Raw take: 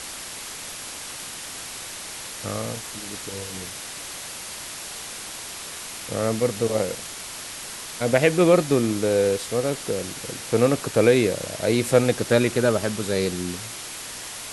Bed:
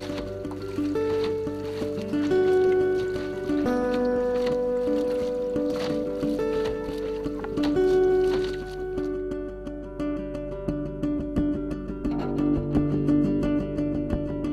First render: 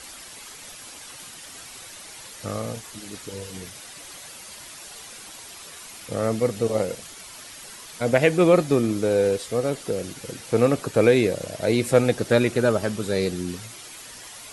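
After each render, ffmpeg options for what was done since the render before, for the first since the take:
ffmpeg -i in.wav -af "afftdn=noise_reduction=9:noise_floor=-36" out.wav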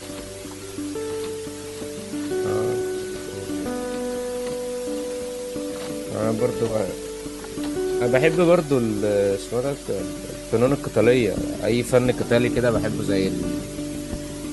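ffmpeg -i in.wav -i bed.wav -filter_complex "[1:a]volume=-3.5dB[link_01];[0:a][link_01]amix=inputs=2:normalize=0" out.wav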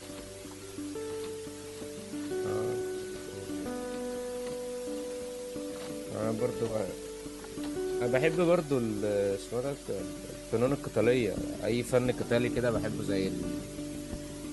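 ffmpeg -i in.wav -af "volume=-9dB" out.wav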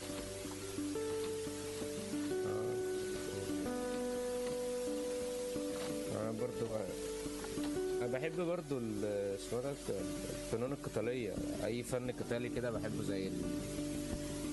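ffmpeg -i in.wav -af "acompressor=threshold=-35dB:ratio=6" out.wav

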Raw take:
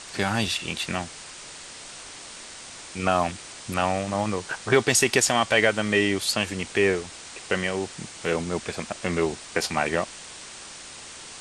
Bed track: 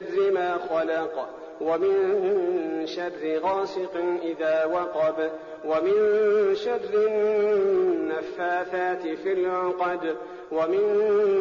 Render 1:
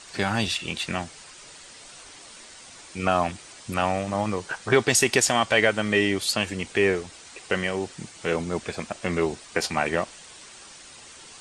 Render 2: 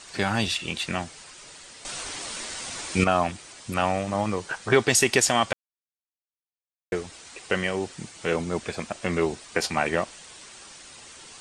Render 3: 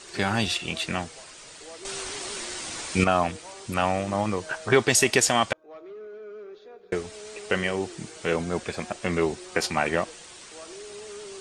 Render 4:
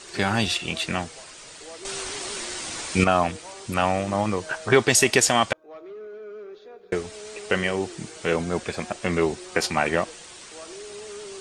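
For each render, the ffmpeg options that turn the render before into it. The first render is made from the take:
ffmpeg -i in.wav -af "afftdn=noise_reduction=7:noise_floor=-42" out.wav
ffmpeg -i in.wav -filter_complex "[0:a]asplit=5[link_01][link_02][link_03][link_04][link_05];[link_01]atrim=end=1.852[link_06];[link_02]atrim=start=1.848:end=3.042,asetpts=PTS-STARTPTS,volume=10.5dB[link_07];[link_03]atrim=start=3.038:end=5.53,asetpts=PTS-STARTPTS,afade=type=out:start_time=2.488:duration=0.004:curve=hsin[link_08];[link_04]atrim=start=5.53:end=6.92,asetpts=PTS-STARTPTS,volume=0[link_09];[link_05]atrim=start=6.92,asetpts=PTS-STARTPTS,afade=type=in:duration=0.004:curve=hsin[link_10];[link_06][link_07]acrossfade=duration=0.004:curve1=hsin:curve2=hsin[link_11];[link_08][link_09][link_10]concat=n=3:v=0:a=1[link_12];[link_11][link_12]acrossfade=duration=0.004:curve1=hsin:curve2=hsin" out.wav
ffmpeg -i in.wav -i bed.wav -filter_complex "[1:a]volume=-20.5dB[link_01];[0:a][link_01]amix=inputs=2:normalize=0" out.wav
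ffmpeg -i in.wav -af "volume=2dB" out.wav

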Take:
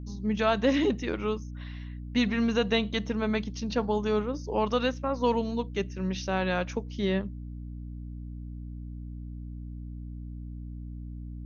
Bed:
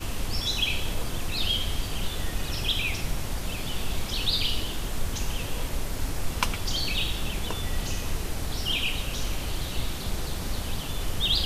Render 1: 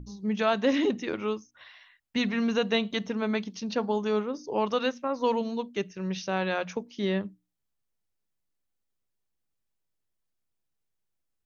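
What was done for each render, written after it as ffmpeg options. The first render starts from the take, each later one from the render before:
ffmpeg -i in.wav -af "bandreject=frequency=60:width_type=h:width=6,bandreject=frequency=120:width_type=h:width=6,bandreject=frequency=180:width_type=h:width=6,bandreject=frequency=240:width_type=h:width=6,bandreject=frequency=300:width_type=h:width=6" out.wav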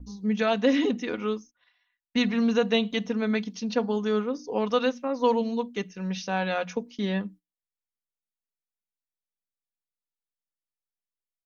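ffmpeg -i in.wav -af "agate=range=-19dB:threshold=-47dB:ratio=16:detection=peak,aecho=1:1:4.1:0.53" out.wav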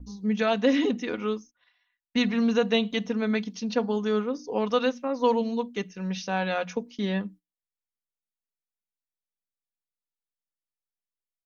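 ffmpeg -i in.wav -af anull out.wav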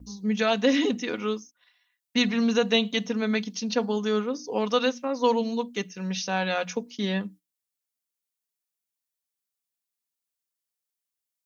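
ffmpeg -i in.wav -af "highpass=74,highshelf=frequency=3900:gain=10.5" out.wav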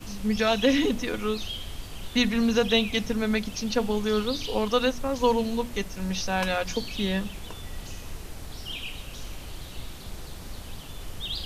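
ffmpeg -i in.wav -i bed.wav -filter_complex "[1:a]volume=-8.5dB[link_01];[0:a][link_01]amix=inputs=2:normalize=0" out.wav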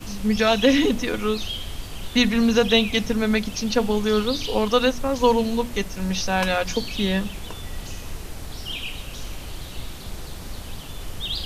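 ffmpeg -i in.wav -af "volume=4.5dB" out.wav

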